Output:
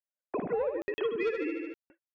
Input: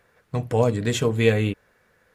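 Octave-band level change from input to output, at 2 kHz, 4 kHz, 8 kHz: −9.5 dB, −16.0 dB, below −30 dB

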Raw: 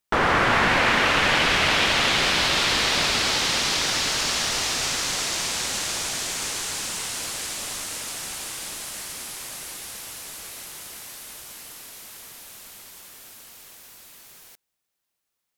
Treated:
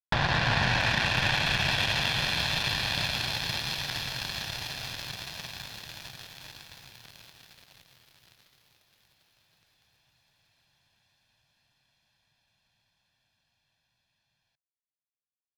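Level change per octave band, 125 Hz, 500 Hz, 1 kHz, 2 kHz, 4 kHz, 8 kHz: +1.5, −10.5, −9.5, −7.0, −7.5, −16.5 decibels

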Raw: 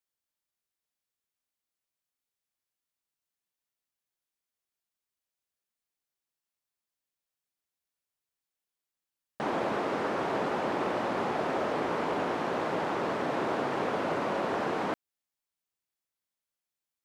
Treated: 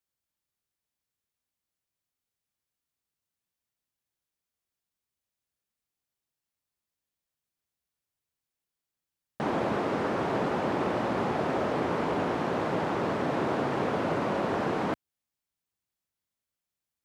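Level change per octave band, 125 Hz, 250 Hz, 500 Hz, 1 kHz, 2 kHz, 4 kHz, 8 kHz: +7.0, +4.0, +1.5, +0.5, 0.0, 0.0, 0.0 decibels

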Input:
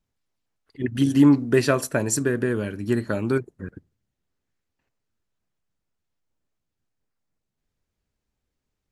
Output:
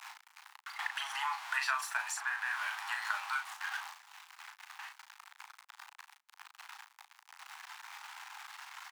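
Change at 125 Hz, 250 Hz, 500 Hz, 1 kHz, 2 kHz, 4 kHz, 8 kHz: below −40 dB, below −40 dB, −36.5 dB, −1.0 dB, −1.0 dB, −2.5 dB, −12.0 dB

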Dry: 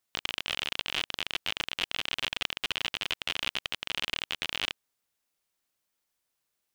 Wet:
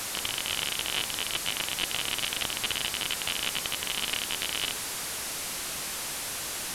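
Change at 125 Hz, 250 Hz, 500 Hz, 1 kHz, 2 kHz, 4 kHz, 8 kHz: +5.5, +5.0, +4.5, +4.0, +1.5, +2.5, +16.0 decibels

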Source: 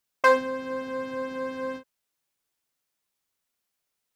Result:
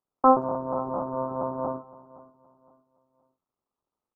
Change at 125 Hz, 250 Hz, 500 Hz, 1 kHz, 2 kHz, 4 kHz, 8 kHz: +14.5 dB, +5.0 dB, −0.5 dB, +4.0 dB, −25.0 dB, below −40 dB, can't be measured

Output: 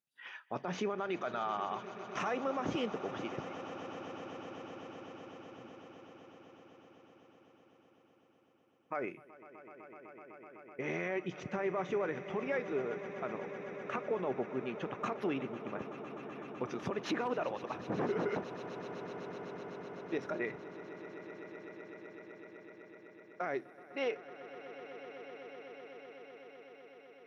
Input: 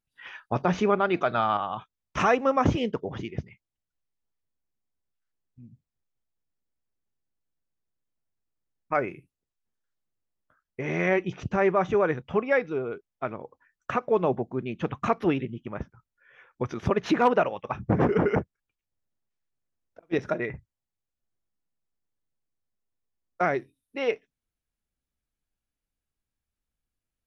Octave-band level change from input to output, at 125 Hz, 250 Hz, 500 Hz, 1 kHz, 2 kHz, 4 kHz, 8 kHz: −14.5 dB, −10.0 dB, −10.0 dB, −11.0 dB, −9.5 dB, −6.5 dB, can't be measured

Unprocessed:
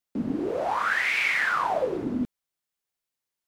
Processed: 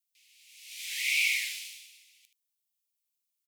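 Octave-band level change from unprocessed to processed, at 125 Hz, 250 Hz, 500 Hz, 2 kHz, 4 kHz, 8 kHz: below −40 dB, below −40 dB, below −40 dB, −6.5 dB, +3.5 dB, +9.5 dB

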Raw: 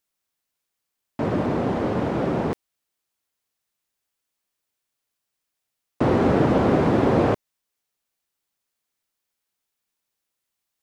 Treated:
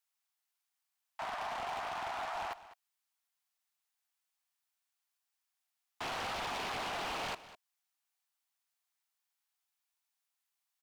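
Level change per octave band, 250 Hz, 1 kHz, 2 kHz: −32.0, −10.5, −7.0 decibels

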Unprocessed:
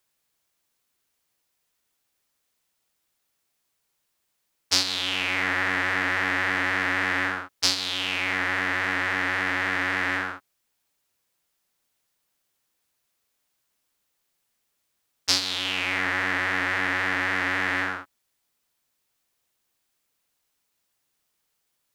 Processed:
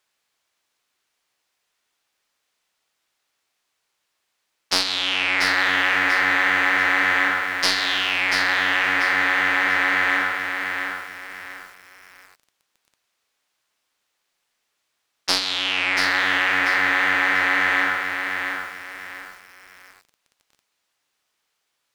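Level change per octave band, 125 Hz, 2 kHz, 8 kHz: −4.0, +6.5, 0.0 decibels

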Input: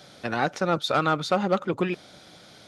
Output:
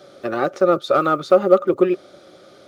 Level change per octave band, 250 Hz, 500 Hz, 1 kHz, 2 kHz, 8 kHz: +6.5 dB, +11.0 dB, +4.0 dB, −0.5 dB, can't be measured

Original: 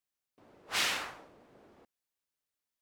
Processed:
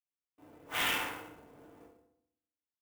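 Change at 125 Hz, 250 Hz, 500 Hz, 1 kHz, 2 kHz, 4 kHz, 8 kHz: +4.5, +5.0, +2.0, +2.0, +0.5, −2.0, −4.0 decibels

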